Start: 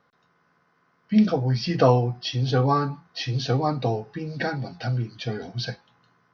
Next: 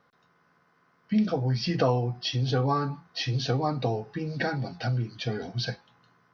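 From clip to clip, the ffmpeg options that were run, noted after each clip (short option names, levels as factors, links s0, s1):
-af "acompressor=threshold=0.0562:ratio=2"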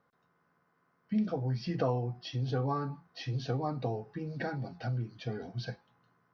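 -af "equalizer=f=4600:w=0.48:g=-7.5,volume=0.501"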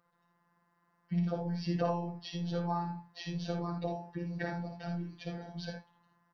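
-af "afftfilt=real='hypot(re,im)*cos(PI*b)':imag='0':win_size=1024:overlap=0.75,aecho=1:1:57|79:0.501|0.376,volume=1.19"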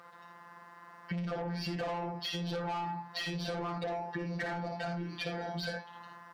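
-filter_complex "[0:a]asplit=2[s0][s1];[s1]highpass=f=720:p=1,volume=20,asoftclip=type=tanh:threshold=0.126[s2];[s0][s2]amix=inputs=2:normalize=0,lowpass=f=3400:p=1,volume=0.501,acompressor=threshold=0.0112:ratio=6,volume=1.5"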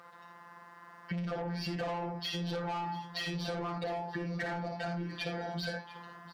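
-af "aecho=1:1:696:0.126"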